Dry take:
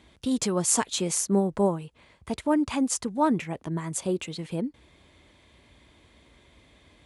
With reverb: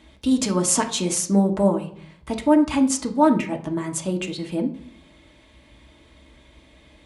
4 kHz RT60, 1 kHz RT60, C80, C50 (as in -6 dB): 0.40 s, 0.55 s, 16.5 dB, 12.0 dB